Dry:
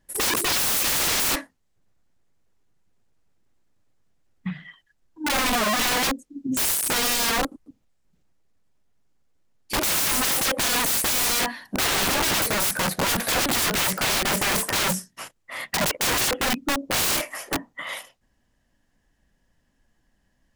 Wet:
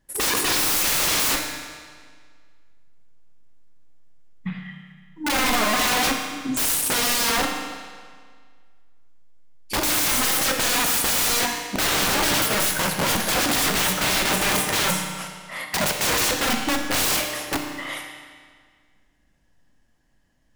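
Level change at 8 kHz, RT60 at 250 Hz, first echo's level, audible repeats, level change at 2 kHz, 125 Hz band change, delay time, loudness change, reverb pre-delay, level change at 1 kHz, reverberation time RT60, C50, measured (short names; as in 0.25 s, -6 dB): +1.5 dB, 1.8 s, none, none, +2.0 dB, +1.5 dB, none, +1.5 dB, 18 ms, +2.0 dB, 1.8 s, 4.5 dB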